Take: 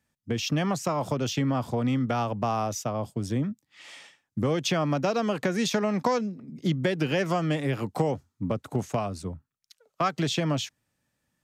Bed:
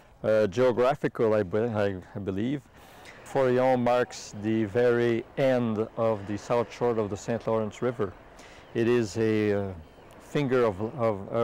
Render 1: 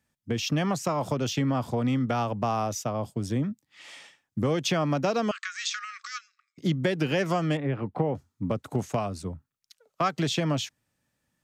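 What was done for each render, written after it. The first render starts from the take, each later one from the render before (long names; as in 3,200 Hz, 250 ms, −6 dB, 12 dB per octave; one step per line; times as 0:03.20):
0:05.31–0:06.58: linear-phase brick-wall band-pass 1,100–8,300 Hz
0:07.57–0:08.15: high-frequency loss of the air 500 metres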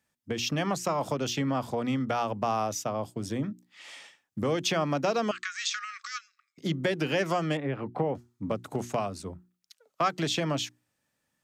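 low-shelf EQ 160 Hz −8.5 dB
mains-hum notches 60/120/180/240/300/360 Hz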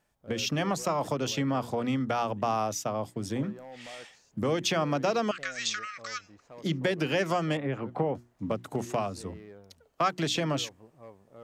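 mix in bed −23 dB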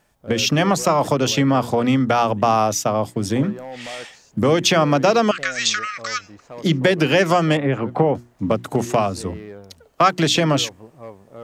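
level +11.5 dB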